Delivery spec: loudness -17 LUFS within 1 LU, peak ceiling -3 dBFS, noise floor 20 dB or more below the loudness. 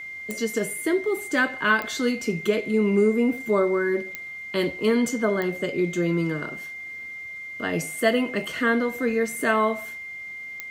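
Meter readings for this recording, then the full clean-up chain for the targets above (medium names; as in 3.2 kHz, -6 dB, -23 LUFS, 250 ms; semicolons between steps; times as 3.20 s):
clicks found 5; steady tone 2.1 kHz; tone level -34 dBFS; loudness -25.0 LUFS; peak level -7.5 dBFS; loudness target -17.0 LUFS
-> de-click; band-stop 2.1 kHz, Q 30; trim +8 dB; peak limiter -3 dBFS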